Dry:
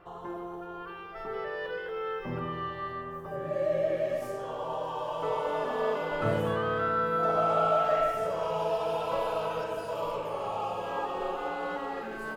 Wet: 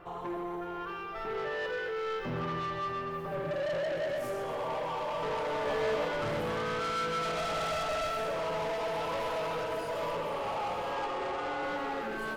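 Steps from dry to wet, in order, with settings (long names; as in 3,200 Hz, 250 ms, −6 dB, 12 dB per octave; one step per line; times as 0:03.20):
0:10.94–0:11.63: Chebyshev band-pass filter 240–8,800 Hz, order 5
soft clipping −35 dBFS, distortion −6 dB
0:05.64–0:06.08: double-tracking delay 14 ms −2 dB
delay with a high-pass on its return 128 ms, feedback 68%, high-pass 1,500 Hz, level −10.5 dB
on a send at −16.5 dB: convolution reverb RT60 0.30 s, pre-delay 3 ms
on the sum: level +4 dB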